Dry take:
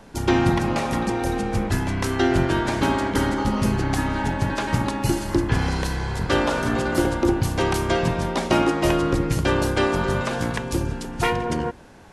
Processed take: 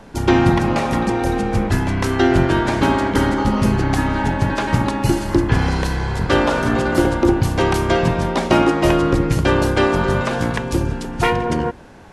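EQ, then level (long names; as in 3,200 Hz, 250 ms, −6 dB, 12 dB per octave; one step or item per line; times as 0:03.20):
high-shelf EQ 4,400 Hz −5.5 dB
+5.0 dB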